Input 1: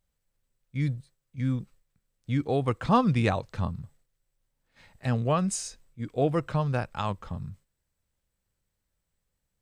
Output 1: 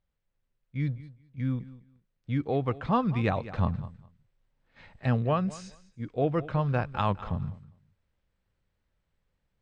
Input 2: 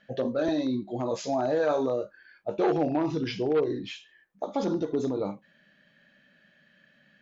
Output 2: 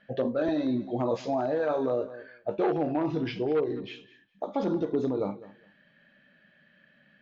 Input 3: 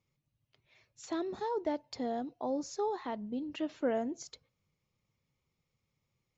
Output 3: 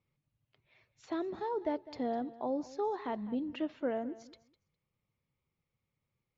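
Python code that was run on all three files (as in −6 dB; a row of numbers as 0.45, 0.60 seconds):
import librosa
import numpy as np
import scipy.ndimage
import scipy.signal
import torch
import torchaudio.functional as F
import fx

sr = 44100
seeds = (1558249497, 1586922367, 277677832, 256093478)

p1 = scipy.signal.sosfilt(scipy.signal.butter(2, 3300.0, 'lowpass', fs=sr, output='sos'), x)
p2 = p1 + fx.echo_feedback(p1, sr, ms=204, feedback_pct=18, wet_db=-18.0, dry=0)
y = fx.rider(p2, sr, range_db=4, speed_s=0.5)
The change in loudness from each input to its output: −1.5, −1.0, −0.5 LU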